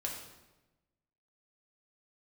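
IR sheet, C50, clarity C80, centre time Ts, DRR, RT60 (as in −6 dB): 4.0 dB, 6.5 dB, 40 ms, −1.5 dB, 1.1 s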